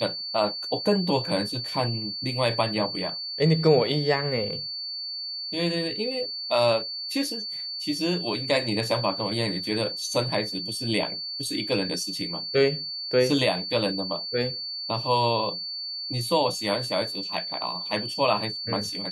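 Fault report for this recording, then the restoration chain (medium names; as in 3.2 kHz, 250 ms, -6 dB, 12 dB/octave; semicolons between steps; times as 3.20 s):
whine 4.5 kHz -31 dBFS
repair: band-stop 4.5 kHz, Q 30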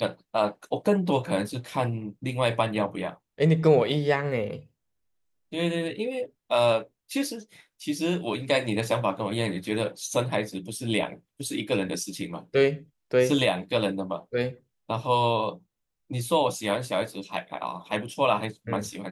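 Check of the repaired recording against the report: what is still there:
nothing left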